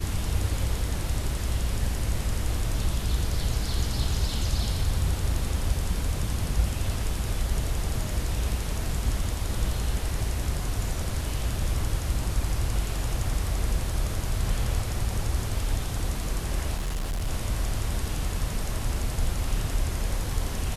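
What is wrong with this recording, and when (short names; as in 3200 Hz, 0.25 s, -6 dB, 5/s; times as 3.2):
16.76–17.28 clipped -25.5 dBFS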